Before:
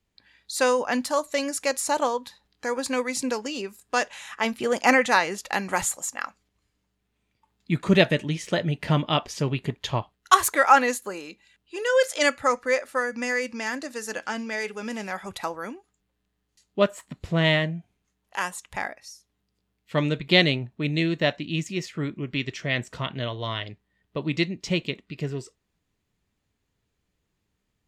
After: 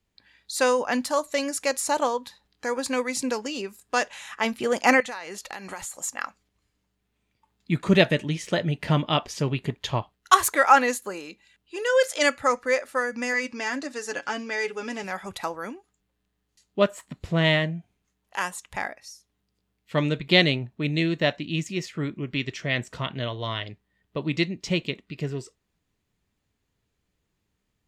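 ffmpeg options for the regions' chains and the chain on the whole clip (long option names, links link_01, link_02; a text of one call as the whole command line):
ffmpeg -i in.wav -filter_complex "[0:a]asettb=1/sr,asplit=3[link_01][link_02][link_03];[link_01]atrim=end=5.004[link_04];[link_02]atrim=start=5:end=5.95,asetpts=PTS-STARTPTS,afade=type=in:duration=0.004:curve=qsin,afade=type=out:start_time=0.946:duration=0.004:curve=qsin,equalizer=frequency=160:width_type=o:width=2.1:gain=-5.5,acompressor=threshold=-32dB:ratio=6:attack=3.2:release=140:knee=1:detection=peak,aeval=exprs='val(0)+0.00112*sin(2*PI*4300*n/s)':channel_layout=same[link_05];[link_03]atrim=start=5.946[link_06];[link_04][link_05]acrossfade=duration=0.004:curve1=hsin:curve2=qsin[link_07];[link_07][link_06]acrossfade=duration=0.004:curve1=qsin:curve2=hsin,asettb=1/sr,asplit=3[link_08][link_09][link_10];[link_08]atrim=end=13.334[link_11];[link_09]atrim=start=13.33:end=15.04,asetpts=PTS-STARTPTS,afade=type=in:duration=0.004:curve=qsin,afade=type=out:start_time=1.706:duration=0.004:curve=qsin,lowpass=8000,aecho=1:1:7.1:0.53,atrim=end_sample=75411[link_12];[link_10]atrim=start=15.036[link_13];[link_11][link_12]acrossfade=duration=0.004:curve1=hsin:curve2=qsin[link_14];[link_14][link_13]acrossfade=duration=0.004:curve1=qsin:curve2=hsin" out.wav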